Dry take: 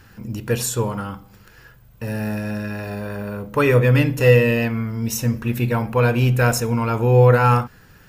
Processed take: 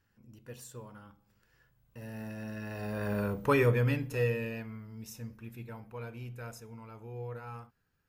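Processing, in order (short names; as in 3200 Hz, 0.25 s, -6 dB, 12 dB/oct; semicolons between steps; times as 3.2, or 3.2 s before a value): Doppler pass-by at 3.21, 10 m/s, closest 2.1 m; gain -3 dB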